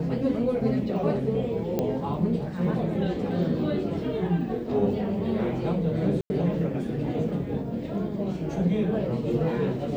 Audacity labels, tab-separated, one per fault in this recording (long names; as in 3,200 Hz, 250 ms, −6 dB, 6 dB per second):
1.790000	1.790000	click −14 dBFS
6.210000	6.300000	drop-out 90 ms